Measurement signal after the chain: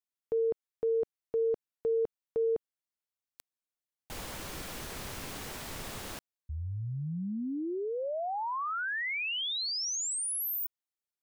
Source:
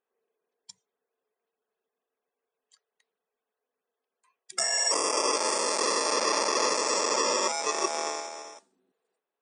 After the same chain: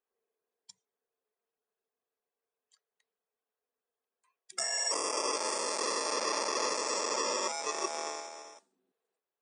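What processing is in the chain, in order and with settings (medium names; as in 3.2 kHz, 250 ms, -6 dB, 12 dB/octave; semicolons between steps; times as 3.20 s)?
bass shelf 140 Hz -3 dB; trim -6 dB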